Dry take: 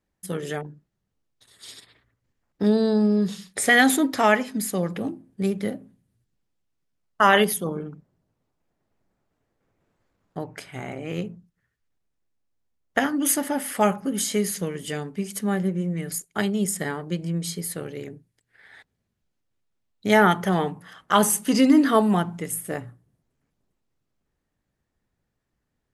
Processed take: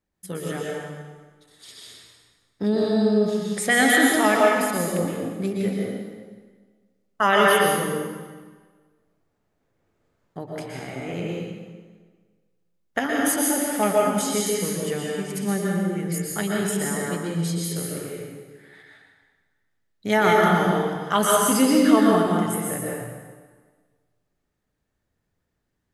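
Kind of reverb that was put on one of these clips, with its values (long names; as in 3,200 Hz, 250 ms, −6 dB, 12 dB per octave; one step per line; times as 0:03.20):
dense smooth reverb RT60 1.5 s, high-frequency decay 0.85×, pre-delay 105 ms, DRR −3 dB
level −3 dB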